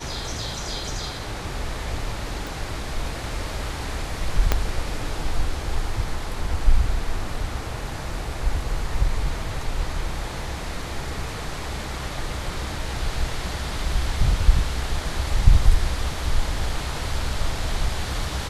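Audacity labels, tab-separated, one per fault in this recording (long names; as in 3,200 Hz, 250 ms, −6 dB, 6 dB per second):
2.470000	2.470000	click
4.520000	4.520000	click −4 dBFS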